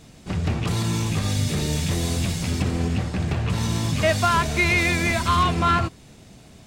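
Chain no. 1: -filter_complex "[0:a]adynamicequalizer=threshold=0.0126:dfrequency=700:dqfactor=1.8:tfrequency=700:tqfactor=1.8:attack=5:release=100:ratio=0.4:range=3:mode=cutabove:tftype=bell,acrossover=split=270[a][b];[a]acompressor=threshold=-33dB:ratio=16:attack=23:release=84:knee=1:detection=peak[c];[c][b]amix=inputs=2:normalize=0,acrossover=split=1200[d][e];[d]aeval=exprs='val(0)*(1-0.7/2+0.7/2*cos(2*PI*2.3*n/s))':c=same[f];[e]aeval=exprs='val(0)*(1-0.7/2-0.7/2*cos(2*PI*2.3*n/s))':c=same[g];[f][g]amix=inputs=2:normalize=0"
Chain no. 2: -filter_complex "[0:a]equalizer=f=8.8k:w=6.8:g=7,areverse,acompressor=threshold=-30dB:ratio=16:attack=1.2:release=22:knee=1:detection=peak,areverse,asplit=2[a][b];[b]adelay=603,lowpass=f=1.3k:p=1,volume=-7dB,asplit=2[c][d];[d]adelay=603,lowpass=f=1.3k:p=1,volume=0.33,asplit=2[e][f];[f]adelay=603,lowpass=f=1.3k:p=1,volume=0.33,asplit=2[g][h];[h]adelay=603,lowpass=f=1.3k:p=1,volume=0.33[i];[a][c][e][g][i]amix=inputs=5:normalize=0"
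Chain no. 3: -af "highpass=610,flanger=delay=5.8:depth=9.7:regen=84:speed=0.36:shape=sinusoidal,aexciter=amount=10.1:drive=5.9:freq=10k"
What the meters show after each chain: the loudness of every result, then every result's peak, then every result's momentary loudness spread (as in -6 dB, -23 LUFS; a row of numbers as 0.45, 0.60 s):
-28.5, -33.0, -27.0 LUFS; -12.5, -21.5, -11.0 dBFS; 10, 5, 15 LU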